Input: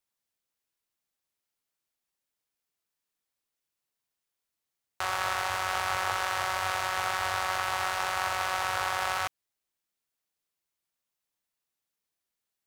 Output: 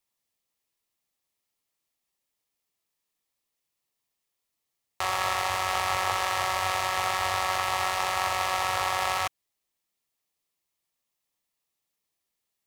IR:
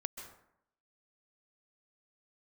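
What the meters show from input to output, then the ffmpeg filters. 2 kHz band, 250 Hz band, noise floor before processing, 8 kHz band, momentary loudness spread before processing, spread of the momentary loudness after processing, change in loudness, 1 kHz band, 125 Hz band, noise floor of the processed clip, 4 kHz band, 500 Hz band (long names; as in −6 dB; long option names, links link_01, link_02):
+0.5 dB, +3.5 dB, below −85 dBFS, +3.5 dB, 2 LU, 2 LU, +2.5 dB, +3.0 dB, +3.5 dB, −83 dBFS, +3.5 dB, +3.5 dB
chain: -af "bandreject=frequency=1500:width=6,volume=3.5dB"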